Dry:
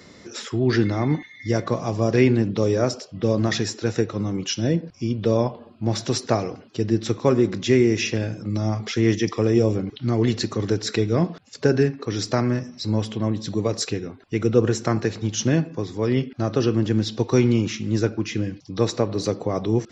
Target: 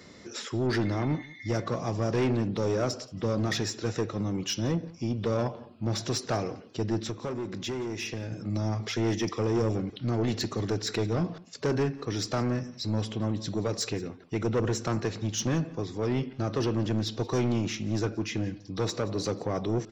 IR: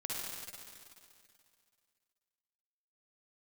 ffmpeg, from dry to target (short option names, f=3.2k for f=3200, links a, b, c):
-filter_complex "[0:a]asoftclip=type=tanh:threshold=-18dB,asettb=1/sr,asplit=3[a][b][c];[a]atrim=end=7.014[d];[b]atrim=start=7.01:end=8.32,asetpts=PTS-STARTPTS,afade=t=in:d=0.004:c=qsin,afade=t=out:st=1.306:d=0.004:c=qsin,acompressor=threshold=-29dB:ratio=4[e];[c]atrim=start=8.316[f];[d][e]acrossfade=d=0.004:c1=hsin:c2=qsin[g];[g][f]acrossfade=d=0.004:c1=qsin:c2=hsin,aecho=1:1:176:0.0841,volume=-3.5dB"